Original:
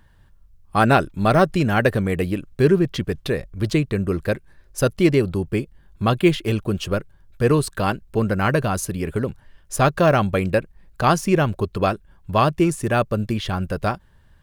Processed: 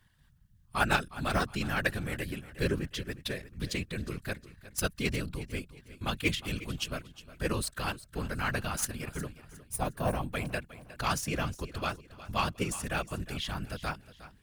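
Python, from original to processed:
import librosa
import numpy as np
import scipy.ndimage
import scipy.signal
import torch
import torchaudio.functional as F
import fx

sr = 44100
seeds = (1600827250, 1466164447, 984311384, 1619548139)

p1 = fx.tracing_dist(x, sr, depth_ms=0.027)
p2 = fx.spec_box(p1, sr, start_s=9.62, length_s=0.69, low_hz=1100.0, high_hz=8100.0, gain_db=-11)
p3 = fx.whisperise(p2, sr, seeds[0])
p4 = fx.level_steps(p3, sr, step_db=14)
p5 = p3 + (p4 * 10.0 ** (-2.0 / 20.0))
p6 = fx.tone_stack(p5, sr, knobs='5-5-5')
y = p6 + fx.echo_feedback(p6, sr, ms=360, feedback_pct=35, wet_db=-16.0, dry=0)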